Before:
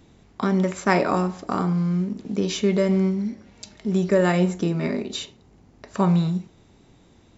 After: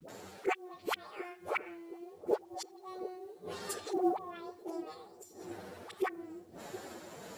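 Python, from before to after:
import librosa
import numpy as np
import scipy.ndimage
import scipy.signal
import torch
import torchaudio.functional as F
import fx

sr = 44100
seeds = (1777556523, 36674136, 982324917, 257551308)

p1 = fx.pitch_bins(x, sr, semitones=11.5)
p2 = fx.auto_swell(p1, sr, attack_ms=230.0)
p3 = scipy.signal.sosfilt(scipy.signal.butter(2, 90.0, 'highpass', fs=sr, output='sos'), p2)
p4 = fx.gate_flip(p3, sr, shuts_db=-26.0, range_db=-33)
p5 = fx.env_lowpass_down(p4, sr, base_hz=1100.0, full_db=-36.5)
p6 = fx.tremolo_random(p5, sr, seeds[0], hz=3.5, depth_pct=55)
p7 = fx.rider(p6, sr, range_db=5, speed_s=0.5)
p8 = p6 + (p7 * librosa.db_to_amplitude(0.0))
p9 = fx.low_shelf(p8, sr, hz=270.0, db=-11.5)
p10 = fx.dispersion(p9, sr, late='highs', ms=86.0, hz=550.0)
p11 = fx.quant_companded(p10, sr, bits=8)
p12 = p11 + fx.echo_wet_lowpass(p11, sr, ms=720, feedback_pct=58, hz=430.0, wet_db=-10, dry=0)
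y = p12 * librosa.db_to_amplitude(8.5)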